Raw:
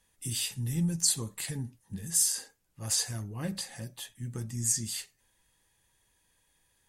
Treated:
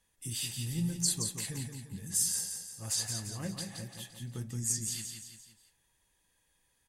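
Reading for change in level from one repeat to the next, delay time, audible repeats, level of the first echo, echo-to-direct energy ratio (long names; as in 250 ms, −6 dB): −6.5 dB, 172 ms, 4, −6.0 dB, −5.0 dB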